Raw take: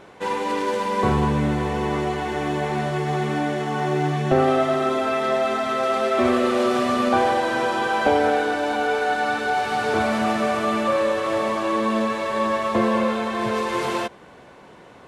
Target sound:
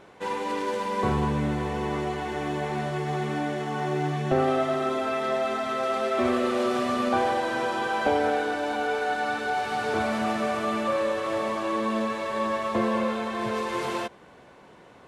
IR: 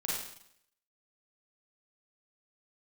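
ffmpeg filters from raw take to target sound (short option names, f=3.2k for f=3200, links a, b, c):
-af "volume=-5dB"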